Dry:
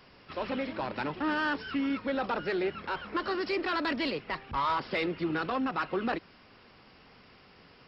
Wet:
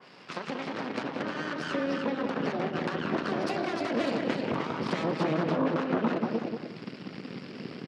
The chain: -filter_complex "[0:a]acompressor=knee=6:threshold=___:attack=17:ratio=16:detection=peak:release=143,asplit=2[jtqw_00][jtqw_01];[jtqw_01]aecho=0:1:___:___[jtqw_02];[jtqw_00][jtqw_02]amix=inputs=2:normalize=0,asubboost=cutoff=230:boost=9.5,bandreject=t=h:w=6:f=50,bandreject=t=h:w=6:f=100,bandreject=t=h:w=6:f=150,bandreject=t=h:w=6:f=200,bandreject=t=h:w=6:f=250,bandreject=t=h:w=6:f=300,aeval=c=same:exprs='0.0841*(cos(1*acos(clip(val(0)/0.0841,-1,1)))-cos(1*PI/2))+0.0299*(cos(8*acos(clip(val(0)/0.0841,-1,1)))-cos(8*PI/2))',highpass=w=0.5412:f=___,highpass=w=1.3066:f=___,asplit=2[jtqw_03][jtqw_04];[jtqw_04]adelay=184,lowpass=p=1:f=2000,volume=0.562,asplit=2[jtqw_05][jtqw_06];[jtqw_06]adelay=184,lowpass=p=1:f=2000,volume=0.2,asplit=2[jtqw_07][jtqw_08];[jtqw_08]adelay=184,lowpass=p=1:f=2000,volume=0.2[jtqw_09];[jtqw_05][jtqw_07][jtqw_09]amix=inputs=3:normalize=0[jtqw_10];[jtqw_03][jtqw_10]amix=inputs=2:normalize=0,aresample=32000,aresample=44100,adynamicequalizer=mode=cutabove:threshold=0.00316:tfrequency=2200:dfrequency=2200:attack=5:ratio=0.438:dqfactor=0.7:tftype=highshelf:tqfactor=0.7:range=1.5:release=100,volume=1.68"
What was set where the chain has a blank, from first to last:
0.00794, 306, 0.596, 160, 160